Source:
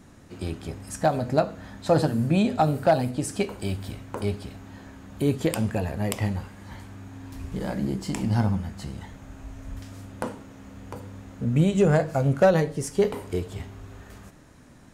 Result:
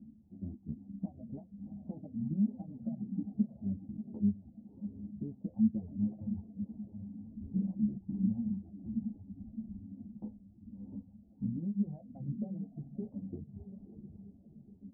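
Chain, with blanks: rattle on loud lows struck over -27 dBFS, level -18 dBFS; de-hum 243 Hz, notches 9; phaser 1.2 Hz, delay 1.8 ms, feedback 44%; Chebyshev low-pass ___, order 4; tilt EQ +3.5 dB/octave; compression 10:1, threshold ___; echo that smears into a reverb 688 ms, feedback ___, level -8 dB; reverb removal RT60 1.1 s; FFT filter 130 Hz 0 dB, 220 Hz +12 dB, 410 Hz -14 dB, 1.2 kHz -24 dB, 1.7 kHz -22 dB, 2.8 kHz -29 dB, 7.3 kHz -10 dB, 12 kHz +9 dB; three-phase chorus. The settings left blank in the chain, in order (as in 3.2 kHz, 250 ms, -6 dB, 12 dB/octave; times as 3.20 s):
760 Hz, -31 dBFS, 47%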